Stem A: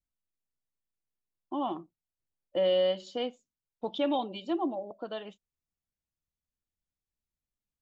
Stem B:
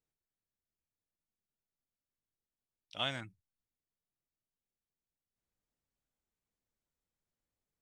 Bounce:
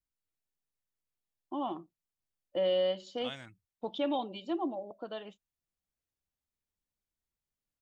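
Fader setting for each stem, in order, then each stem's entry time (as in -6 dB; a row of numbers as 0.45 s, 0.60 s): -3.0 dB, -7.0 dB; 0.00 s, 0.25 s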